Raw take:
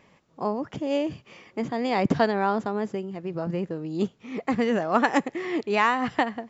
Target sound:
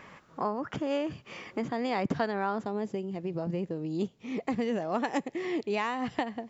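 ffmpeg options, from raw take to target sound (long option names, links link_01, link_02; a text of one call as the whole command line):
ffmpeg -i in.wav -af "asetnsamples=nb_out_samples=441:pad=0,asendcmd='1.12 equalizer g 2.5;2.65 equalizer g -7',equalizer=frequency=1400:width_type=o:width=0.92:gain=10.5,acompressor=threshold=-41dB:ratio=2,volume=5dB" out.wav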